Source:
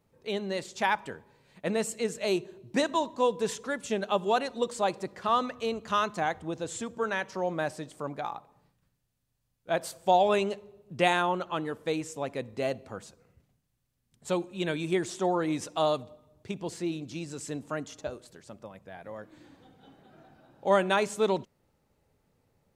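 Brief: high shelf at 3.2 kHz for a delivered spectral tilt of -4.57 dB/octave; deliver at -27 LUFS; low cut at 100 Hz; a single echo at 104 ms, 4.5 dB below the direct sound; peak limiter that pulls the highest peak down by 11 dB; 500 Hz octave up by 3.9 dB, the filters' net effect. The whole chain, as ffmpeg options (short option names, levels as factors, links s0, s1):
-af "highpass=100,equalizer=f=500:t=o:g=5,highshelf=f=3200:g=-6.5,alimiter=limit=0.112:level=0:latency=1,aecho=1:1:104:0.596,volume=1.5"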